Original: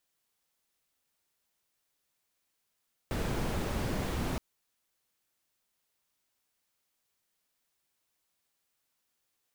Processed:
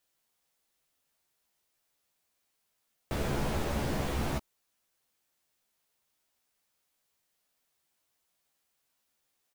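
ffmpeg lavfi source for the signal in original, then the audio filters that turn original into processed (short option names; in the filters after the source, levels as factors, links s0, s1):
-f lavfi -i "anoisesrc=c=brown:a=0.117:d=1.27:r=44100:seed=1"
-filter_complex "[0:a]equalizer=f=670:t=o:w=0.77:g=2.5,asplit=2[s0][s1];[s1]adelay=14,volume=0.562[s2];[s0][s2]amix=inputs=2:normalize=0"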